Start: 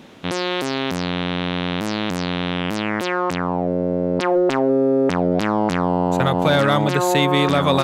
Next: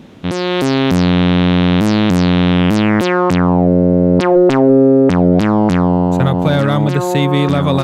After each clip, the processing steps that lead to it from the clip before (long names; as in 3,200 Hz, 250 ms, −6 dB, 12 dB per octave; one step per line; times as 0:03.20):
low-shelf EQ 310 Hz +12 dB
automatic gain control
level −1 dB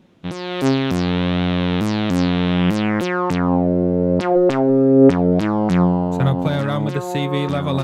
flanger 0.35 Hz, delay 5.3 ms, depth 4.6 ms, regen +65%
expander for the loud parts 1.5 to 1, over −34 dBFS
level +2 dB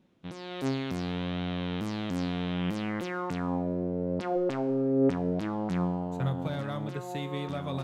tuned comb filter 65 Hz, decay 1.2 s, harmonics all, mix 60%
level −6.5 dB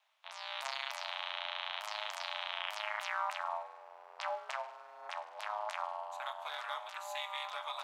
Chebyshev high-pass with heavy ripple 730 Hz, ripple 3 dB
ring modulation 120 Hz
level +6 dB